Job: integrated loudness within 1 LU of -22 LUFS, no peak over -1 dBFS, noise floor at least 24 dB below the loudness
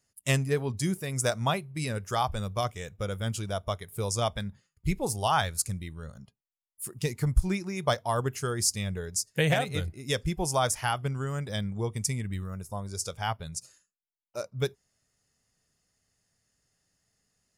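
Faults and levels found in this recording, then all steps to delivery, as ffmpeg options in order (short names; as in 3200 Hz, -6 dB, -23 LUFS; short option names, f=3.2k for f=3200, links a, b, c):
loudness -30.5 LUFS; peak -11.5 dBFS; loudness target -22.0 LUFS
-> -af "volume=8.5dB"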